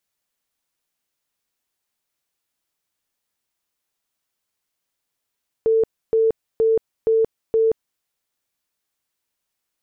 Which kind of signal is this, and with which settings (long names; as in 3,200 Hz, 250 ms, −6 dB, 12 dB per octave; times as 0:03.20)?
tone bursts 447 Hz, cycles 79, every 0.47 s, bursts 5, −13.5 dBFS